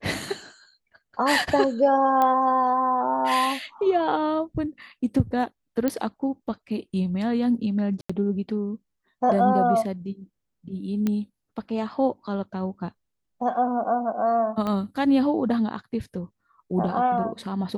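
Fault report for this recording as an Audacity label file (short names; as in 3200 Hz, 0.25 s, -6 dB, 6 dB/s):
2.220000	2.220000	pop -11 dBFS
5.880000	5.880000	pop -11 dBFS
8.010000	8.100000	gap 85 ms
11.070000	11.070000	pop -13 dBFS
14.670000	14.670000	pop -17 dBFS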